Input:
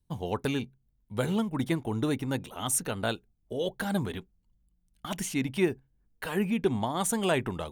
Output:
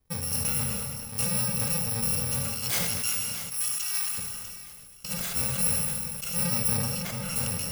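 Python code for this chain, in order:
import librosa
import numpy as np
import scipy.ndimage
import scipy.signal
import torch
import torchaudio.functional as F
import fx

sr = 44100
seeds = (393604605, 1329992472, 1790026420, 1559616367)

p1 = fx.bit_reversed(x, sr, seeds[0], block=128)
p2 = fx.fold_sine(p1, sr, drive_db=9, ceiling_db=-12.5)
p3 = p1 + (p2 * 10.0 ** (-9.5 / 20.0))
p4 = fx.highpass(p3, sr, hz=1000.0, slope=24, at=(2.97, 4.18))
p5 = fx.high_shelf(p4, sr, hz=2800.0, db=-10.5, at=(6.77, 7.36))
p6 = p5 + fx.echo_feedback(p5, sr, ms=644, feedback_pct=56, wet_db=-20, dry=0)
p7 = fx.rev_plate(p6, sr, seeds[1], rt60_s=1.6, hf_ratio=0.9, predelay_ms=0, drr_db=5.0)
p8 = fx.sustainer(p7, sr, db_per_s=24.0)
y = p8 * 10.0 ** (-6.5 / 20.0)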